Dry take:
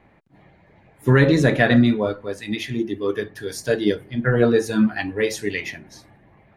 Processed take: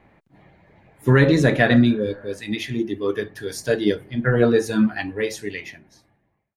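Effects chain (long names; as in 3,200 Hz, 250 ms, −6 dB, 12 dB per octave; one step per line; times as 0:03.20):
fade-out on the ending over 1.83 s
healed spectral selection 0:01.88–0:02.31, 580–2,200 Hz after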